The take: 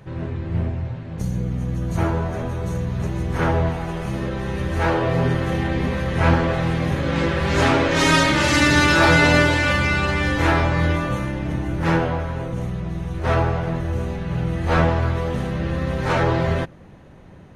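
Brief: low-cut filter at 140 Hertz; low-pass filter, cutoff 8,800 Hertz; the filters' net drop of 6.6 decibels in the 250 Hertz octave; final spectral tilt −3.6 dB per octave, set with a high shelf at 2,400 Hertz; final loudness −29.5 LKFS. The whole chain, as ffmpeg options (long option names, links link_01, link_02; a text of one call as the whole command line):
ffmpeg -i in.wav -af "highpass=140,lowpass=8800,equalizer=frequency=250:width_type=o:gain=-9,highshelf=frequency=2400:gain=-4,volume=-5.5dB" out.wav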